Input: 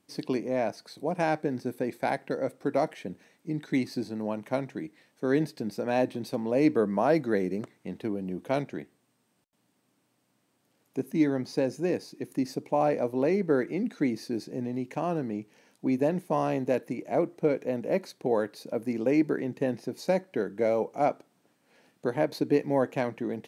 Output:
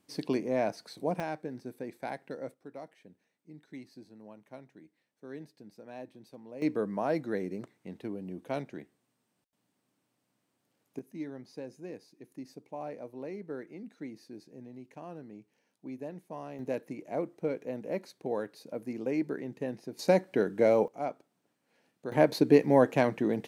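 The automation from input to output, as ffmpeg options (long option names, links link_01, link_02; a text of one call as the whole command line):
ffmpeg -i in.wav -af "asetnsamples=nb_out_samples=441:pad=0,asendcmd='1.2 volume volume -9.5dB;2.54 volume volume -18.5dB;6.62 volume volume -6.5dB;10.99 volume volume -15dB;16.59 volume volume -7dB;19.99 volume volume 2dB;20.88 volume volume -9dB;22.12 volume volume 3.5dB',volume=-1dB" out.wav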